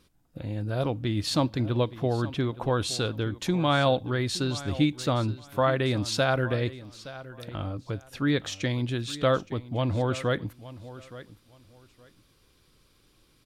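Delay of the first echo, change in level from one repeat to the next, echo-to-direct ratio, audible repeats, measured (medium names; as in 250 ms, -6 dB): 869 ms, -13.0 dB, -16.5 dB, 2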